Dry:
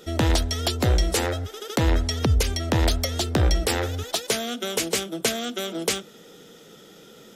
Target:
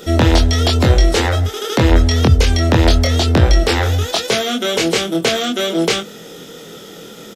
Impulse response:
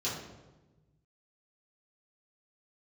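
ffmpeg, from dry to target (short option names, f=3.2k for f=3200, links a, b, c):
-filter_complex "[0:a]acrossover=split=6000[a][b];[b]acompressor=threshold=-45dB:ratio=4:attack=1:release=60[c];[a][c]amix=inputs=2:normalize=0,asplit=2[d][e];[e]alimiter=limit=-23.5dB:level=0:latency=1,volume=1dB[f];[d][f]amix=inputs=2:normalize=0,acrusher=bits=11:mix=0:aa=0.000001,asplit=2[g][h];[h]adelay=24,volume=-3dB[i];[g][i]amix=inputs=2:normalize=0,volume=4.5dB"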